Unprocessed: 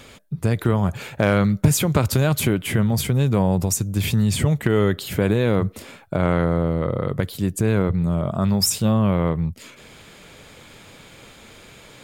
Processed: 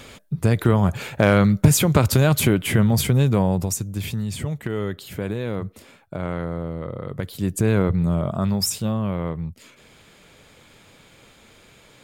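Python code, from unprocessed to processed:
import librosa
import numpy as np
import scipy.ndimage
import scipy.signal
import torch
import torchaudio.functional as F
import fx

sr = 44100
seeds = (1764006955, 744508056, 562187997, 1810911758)

y = fx.gain(x, sr, db=fx.line((3.15, 2.0), (4.25, -8.0), (7.05, -8.0), (7.56, 0.5), (8.11, 0.5), (9.01, -6.0)))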